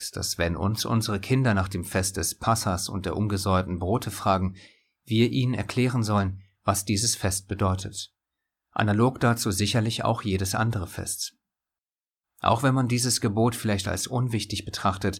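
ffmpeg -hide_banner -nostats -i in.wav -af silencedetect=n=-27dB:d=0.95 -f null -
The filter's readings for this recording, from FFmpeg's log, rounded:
silence_start: 11.26
silence_end: 12.44 | silence_duration: 1.18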